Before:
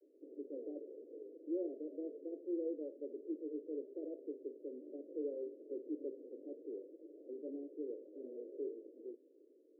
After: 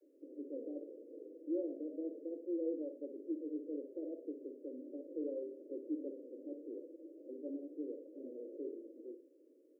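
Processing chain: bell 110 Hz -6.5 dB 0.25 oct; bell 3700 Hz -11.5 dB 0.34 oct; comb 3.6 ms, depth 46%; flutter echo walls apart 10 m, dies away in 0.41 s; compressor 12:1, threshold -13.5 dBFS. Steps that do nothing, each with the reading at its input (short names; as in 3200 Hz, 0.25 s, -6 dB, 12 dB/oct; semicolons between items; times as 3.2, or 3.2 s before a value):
bell 110 Hz: input band starts at 230 Hz; bell 3700 Hz: input band ends at 680 Hz; compressor, threshold -13.5 dBFS: input peak -28.0 dBFS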